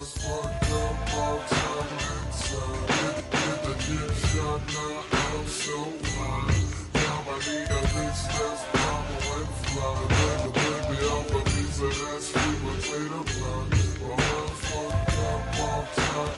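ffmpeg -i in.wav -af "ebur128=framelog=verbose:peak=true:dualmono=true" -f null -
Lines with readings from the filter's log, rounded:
Integrated loudness:
  I:         -24.7 LUFS
  Threshold: -34.7 LUFS
Loudness range:
  LRA:         1.6 LU
  Threshold: -44.6 LUFS
  LRA low:   -25.2 LUFS
  LRA high:  -23.6 LUFS
True peak:
  Peak:       -9.9 dBFS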